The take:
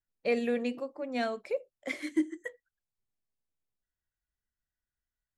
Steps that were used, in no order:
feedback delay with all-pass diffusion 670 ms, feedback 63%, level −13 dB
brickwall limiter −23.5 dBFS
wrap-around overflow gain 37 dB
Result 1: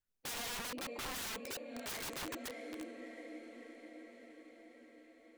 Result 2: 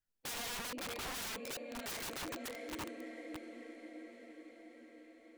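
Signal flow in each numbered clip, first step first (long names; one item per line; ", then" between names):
brickwall limiter, then feedback delay with all-pass diffusion, then wrap-around overflow
feedback delay with all-pass diffusion, then brickwall limiter, then wrap-around overflow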